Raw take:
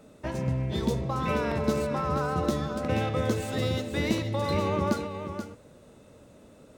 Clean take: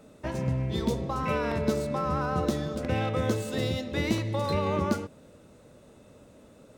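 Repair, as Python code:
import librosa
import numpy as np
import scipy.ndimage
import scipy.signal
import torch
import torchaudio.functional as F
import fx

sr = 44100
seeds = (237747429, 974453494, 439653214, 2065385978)

y = fx.fix_echo_inverse(x, sr, delay_ms=480, level_db=-8.5)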